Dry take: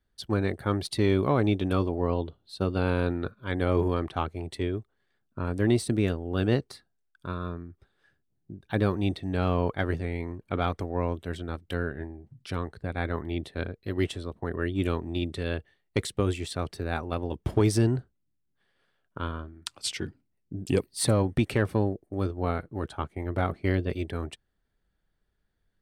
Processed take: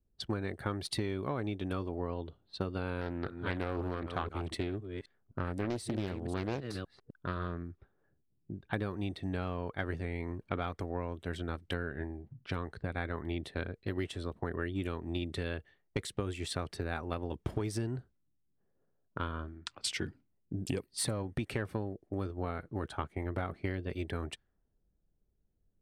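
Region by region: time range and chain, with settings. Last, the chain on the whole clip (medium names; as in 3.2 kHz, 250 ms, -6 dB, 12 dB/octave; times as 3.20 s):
3.01–7.63 s: chunks repeated in reverse 256 ms, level -12 dB + loudspeaker Doppler distortion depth 0.58 ms
whole clip: compression 10:1, threshold -31 dBFS; dynamic bell 1.7 kHz, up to +3 dB, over -53 dBFS, Q 1.2; level-controlled noise filter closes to 470 Hz, open at -35.5 dBFS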